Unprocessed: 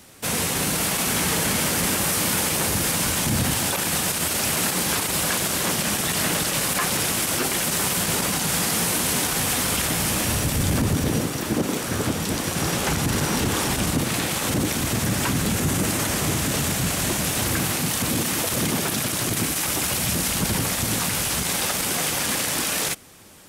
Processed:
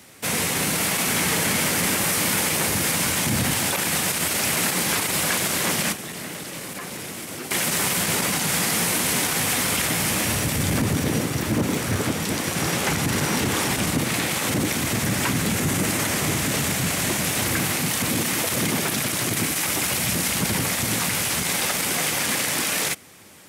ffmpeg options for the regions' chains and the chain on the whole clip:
-filter_complex "[0:a]asettb=1/sr,asplit=3[s0][s1][s2];[s0]atrim=end=5.924[s3];[s1]atrim=start=5.92:end=7.51,asetpts=PTS-STARTPTS,afade=t=in:d=0.004:c=qsin,afade=t=out:st=1.586:d=0.004:c=qsin,acrossover=split=230|500[s4][s5][s6];[s4]acompressor=threshold=0.00708:ratio=4[s7];[s5]acompressor=threshold=0.01:ratio=4[s8];[s6]acompressor=threshold=0.0158:ratio=4[s9];[s7][s8][s9]amix=inputs=3:normalize=0,asplit=2[s10][s11];[s11]adelay=35,volume=0.224[s12];[s10][s12]amix=inputs=2:normalize=0,atrim=end_sample=70119[s13];[s2]atrim=start=7.506[s14];[s3][s13]acrossfade=d=0.004:c1=hsin:c2=qsin[s15];[s15][s14]acrossfade=d=0.004:c1=qsin:c2=hsin,asettb=1/sr,asplit=3[s16][s17][s18];[s16]atrim=end=11.304[s19];[s17]atrim=start=11.3:end=11.96,asetpts=PTS-STARTPTS,afade=t=in:d=0.004:c=qsin,afade=t=out:st=0.656:d=0.004:c=qsin,equalizer=f=83:w=0.83:g=12,asoftclip=type=hard:threshold=0.15[s20];[s18]atrim=start=11.956[s21];[s19][s20]acrossfade=d=0.004:c1=hsin:c2=qsin[s22];[s22][s21]acrossfade=d=0.004:c1=qsin:c2=hsin,highpass=87,equalizer=f=2100:t=o:w=0.49:g=4.5"

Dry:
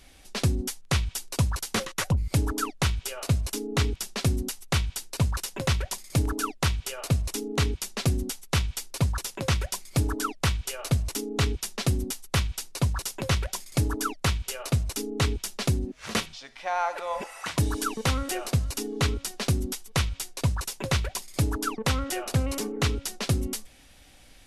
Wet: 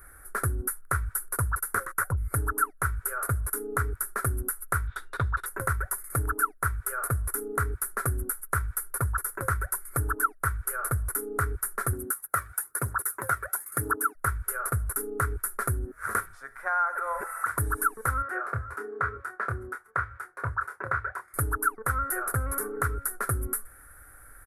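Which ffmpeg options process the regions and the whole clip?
-filter_complex "[0:a]asettb=1/sr,asplit=3[s0][s1][s2];[s0]atrim=end=4.874[s3];[s1]atrim=start=4.87:end=5.46,asetpts=PTS-STARTPTS,afade=t=in:d=0.004:c=qsin,afade=t=out:st=0.586:d=0.004:c=qsin,lowpass=f=3600:t=q:w=13,aeval=exprs='val(0)+0.00178*sin(2*PI*2800*n/s)':c=same[s4];[s2]atrim=start=5.456[s5];[s3][s4]acrossfade=d=0.004:c1=hsin:c2=qsin[s6];[s6][s5]acrossfade=d=0.004:c1=qsin:c2=hsin,asettb=1/sr,asplit=3[s7][s8][s9];[s7]atrim=end=11.934[s10];[s8]atrim=start=11.93:end=14.15,asetpts=PTS-STARTPTS,afade=t=in:d=0.004:c=qsin,afade=t=out:st=2.216:d=0.004:c=qsin,highpass=180,aphaser=in_gain=1:out_gain=1:delay=1.8:decay=0.49:speed=1:type=triangular[s11];[s9]atrim=start=14.146[s12];[s10][s11]acrossfade=d=0.004:c1=hsin:c2=qsin[s13];[s13][s12]acrossfade=d=0.004:c1=qsin:c2=hsin,asettb=1/sr,asplit=3[s14][s15][s16];[s14]atrim=end=18.224[s17];[s15]atrim=start=18.22:end=21.34,asetpts=PTS-STARTPTS,afade=t=in:d=0.004:c=qsin,afade=t=out:st=3.116:d=0.004:c=qsin,highpass=120,lowpass=2500,equalizer=f=230:w=0.68:g=-8,asplit=2[s18][s19];[s19]adelay=27,volume=0.501[s20];[s18][s20]amix=inputs=2:normalize=0,atrim=end_sample=137592[s21];[s16]atrim=start=21.336[s22];[s17][s21]acrossfade=d=0.004:c1=hsin:c2=qsin[s23];[s23][s22]acrossfade=d=0.004:c1=qsin:c2=hsin,firequalizer=gain_entry='entry(110,0);entry(180,-16);entry(400,-1);entry(590,-6);entry(850,-6);entry(1400,15);entry(2800,-29);entry(6400,-17);entry(10000,9)':delay=0.05:min_phase=1,acompressor=threshold=0.0355:ratio=2.5,volume=1.33"

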